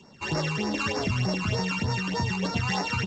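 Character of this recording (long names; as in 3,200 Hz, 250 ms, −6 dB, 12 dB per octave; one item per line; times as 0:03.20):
a buzz of ramps at a fixed pitch in blocks of 16 samples
phaser sweep stages 12, 3.3 Hz, lowest notch 560–3,100 Hz
G.722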